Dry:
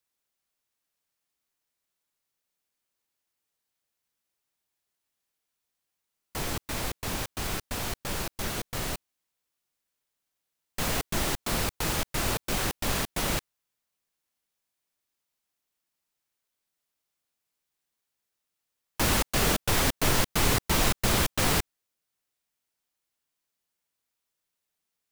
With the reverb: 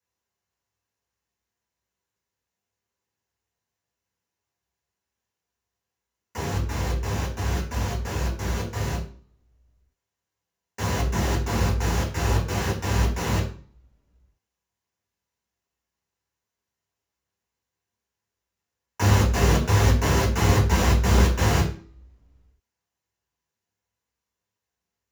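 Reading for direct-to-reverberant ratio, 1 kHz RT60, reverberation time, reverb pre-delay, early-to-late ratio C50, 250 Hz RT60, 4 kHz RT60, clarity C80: -2.5 dB, 0.45 s, 0.45 s, 3 ms, 7.5 dB, 0.55 s, 0.40 s, 12.5 dB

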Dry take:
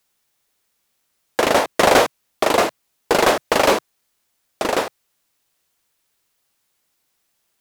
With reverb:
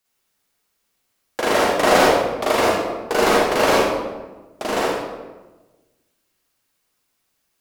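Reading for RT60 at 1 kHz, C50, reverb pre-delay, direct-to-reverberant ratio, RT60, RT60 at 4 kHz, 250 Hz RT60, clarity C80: 1.1 s, -2.0 dB, 36 ms, -7.0 dB, 1.2 s, 0.75 s, 1.5 s, 1.5 dB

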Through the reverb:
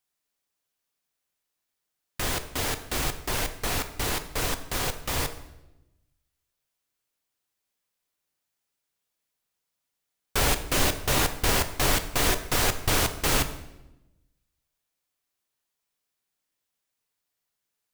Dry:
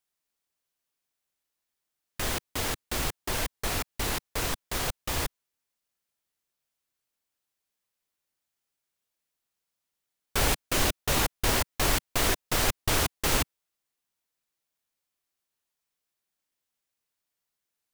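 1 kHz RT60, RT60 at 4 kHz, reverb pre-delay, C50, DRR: 0.85 s, 0.80 s, 3 ms, 12.0 dB, 8.5 dB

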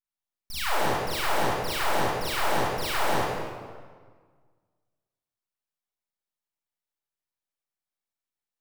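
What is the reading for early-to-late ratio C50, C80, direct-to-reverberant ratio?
-5.0 dB, -1.5 dB, -10.5 dB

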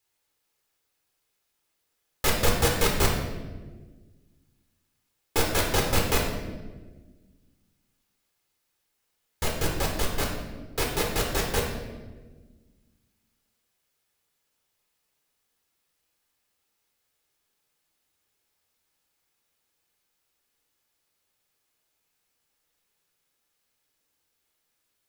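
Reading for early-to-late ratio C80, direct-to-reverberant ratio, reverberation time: 6.0 dB, -0.5 dB, 1.4 s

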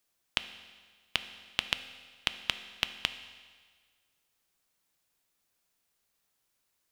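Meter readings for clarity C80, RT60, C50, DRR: 13.5 dB, 1.6 s, 12.0 dB, 10.0 dB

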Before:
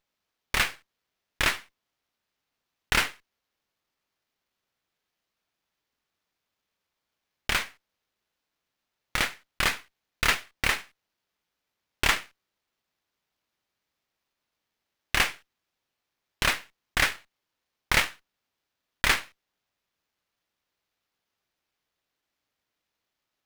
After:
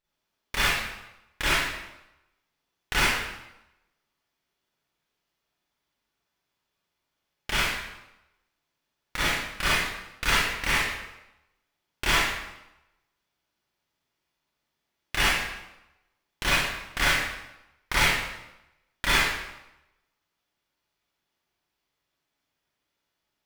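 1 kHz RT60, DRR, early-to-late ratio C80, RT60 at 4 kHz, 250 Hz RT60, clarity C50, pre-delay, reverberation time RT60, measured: 0.95 s, -9.0 dB, 1.5 dB, 0.80 s, 0.90 s, -2.5 dB, 32 ms, 0.95 s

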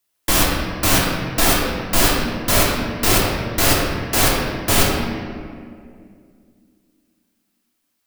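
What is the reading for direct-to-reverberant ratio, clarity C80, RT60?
-5.0 dB, 1.5 dB, 2.3 s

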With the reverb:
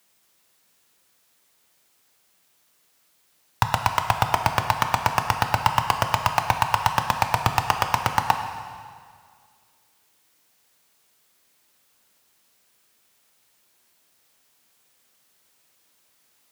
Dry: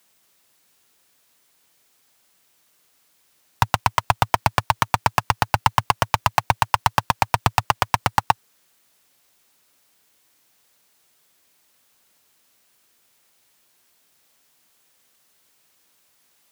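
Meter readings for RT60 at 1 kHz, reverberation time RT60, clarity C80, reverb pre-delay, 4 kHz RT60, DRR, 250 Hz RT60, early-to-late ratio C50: 2.0 s, 2.0 s, 8.0 dB, 5 ms, 1.9 s, 5.5 dB, 2.0 s, 7.0 dB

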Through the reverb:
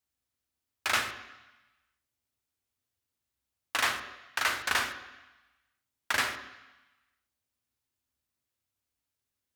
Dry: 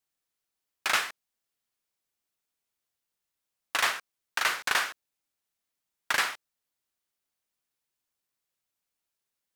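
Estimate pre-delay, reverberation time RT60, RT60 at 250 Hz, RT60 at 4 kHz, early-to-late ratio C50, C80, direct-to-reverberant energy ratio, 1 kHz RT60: 3 ms, 1.0 s, 1.0 s, 1.2 s, 10.5 dB, 12.0 dB, 8.5 dB, 1.2 s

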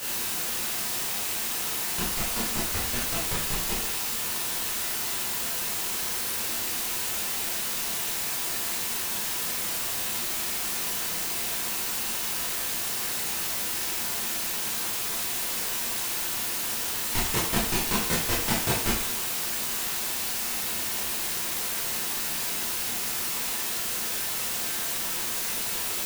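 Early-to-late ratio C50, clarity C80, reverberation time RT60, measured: 2.5 dB, 7.0 dB, 0.55 s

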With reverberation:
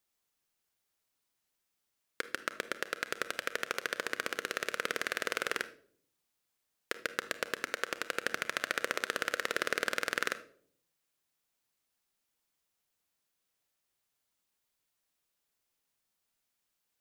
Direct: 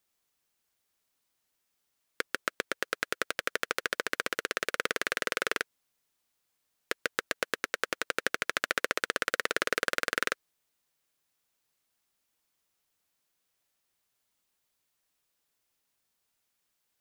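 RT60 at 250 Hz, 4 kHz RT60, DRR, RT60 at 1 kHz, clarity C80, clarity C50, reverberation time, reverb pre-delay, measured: 0.90 s, 0.40 s, 12.0 dB, 0.50 s, 19.0 dB, 14.5 dB, 0.60 s, 31 ms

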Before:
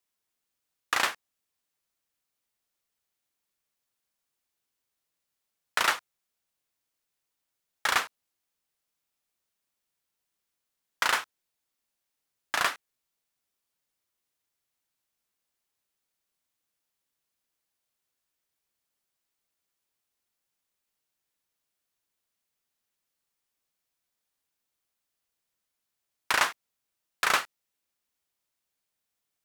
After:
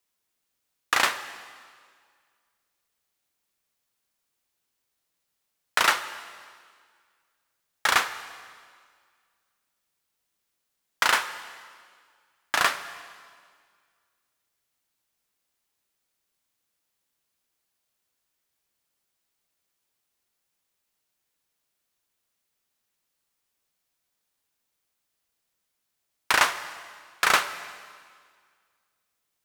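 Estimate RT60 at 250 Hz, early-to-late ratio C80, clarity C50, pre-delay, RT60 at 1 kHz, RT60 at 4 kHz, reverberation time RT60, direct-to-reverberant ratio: 1.9 s, 13.5 dB, 12.5 dB, 5 ms, 1.9 s, 1.8 s, 1.9 s, 11.0 dB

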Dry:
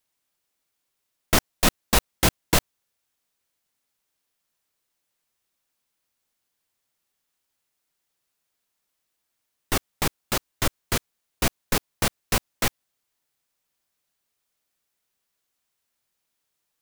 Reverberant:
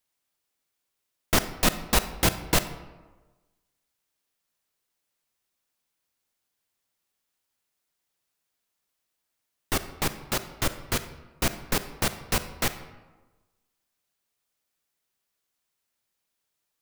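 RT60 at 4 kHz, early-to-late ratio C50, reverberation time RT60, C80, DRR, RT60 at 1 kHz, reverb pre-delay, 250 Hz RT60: 0.70 s, 12.5 dB, 1.2 s, 14.0 dB, 11.0 dB, 1.2 s, 34 ms, 1.3 s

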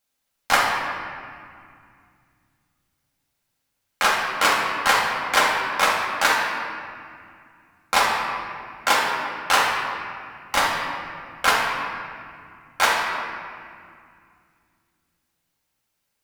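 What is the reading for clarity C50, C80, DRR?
0.5 dB, 2.5 dB, -4.0 dB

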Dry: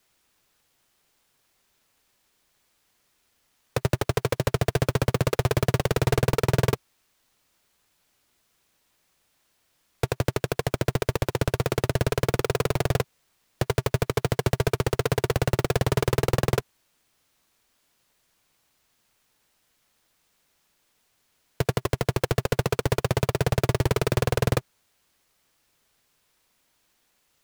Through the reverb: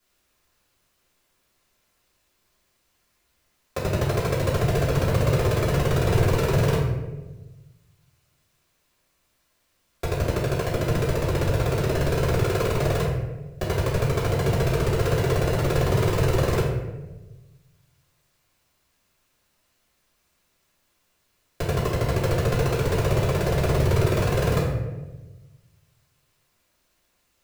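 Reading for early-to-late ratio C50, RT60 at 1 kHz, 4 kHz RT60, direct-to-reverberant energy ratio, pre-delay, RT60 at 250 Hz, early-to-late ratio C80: 2.0 dB, 0.95 s, 0.65 s, -8.5 dB, 3 ms, 1.5 s, 5.0 dB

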